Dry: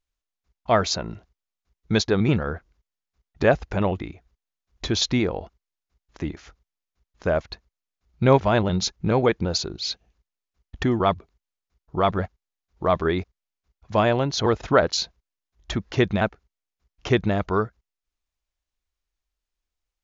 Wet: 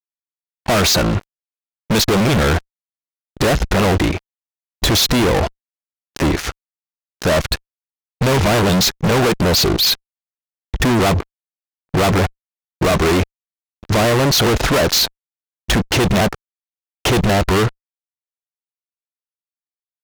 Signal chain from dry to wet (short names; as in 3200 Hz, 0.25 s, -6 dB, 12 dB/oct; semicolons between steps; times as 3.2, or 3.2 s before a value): fuzz box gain 43 dB, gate -49 dBFS; gate with hold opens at -32 dBFS